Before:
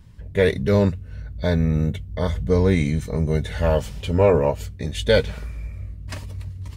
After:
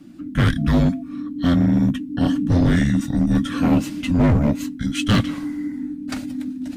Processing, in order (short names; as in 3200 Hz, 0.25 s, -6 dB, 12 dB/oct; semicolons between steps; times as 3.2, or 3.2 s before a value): frequency shift -350 Hz; overloaded stage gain 16 dB; 0.57–1.01 whine 680 Hz -46 dBFS; gain +4 dB